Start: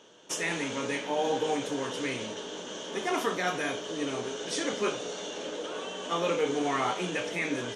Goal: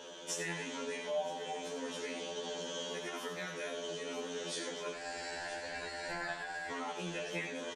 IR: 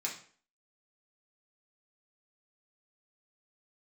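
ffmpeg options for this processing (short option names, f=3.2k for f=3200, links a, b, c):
-filter_complex "[0:a]asettb=1/sr,asplit=3[a][b][c];[a]atrim=end=4.934[d];[b]atrim=start=4.93:end=6.71,asetpts=PTS-STARTPTS,afade=t=in:d=0.004:c=qsin,afade=t=out:st=1.776:d=0.004:c=qsin,aeval=exprs='val(0)*sin(2*PI*1200*n/s)':c=same[e];[c]atrim=start=6.706[f];[d][e]acrossfade=d=0.004:c1=hsin:c2=qsin[g];[g][f]acrossfade=d=0.004:c1=qsin:c2=hsin,asplit=2[h][i];[i]aecho=0:1:961:0.15[j];[h][j]amix=inputs=2:normalize=0,acompressor=threshold=-47dB:ratio=4,aecho=1:1:90:0.335,asplit=2[k][l];[1:a]atrim=start_sample=2205,asetrate=83790,aresample=44100[m];[l][m]afir=irnorm=-1:irlink=0,volume=-6dB[n];[k][n]amix=inputs=2:normalize=0,afftfilt=real='re*2*eq(mod(b,4),0)':imag='im*2*eq(mod(b,4),0)':win_size=2048:overlap=0.75,volume=7.5dB"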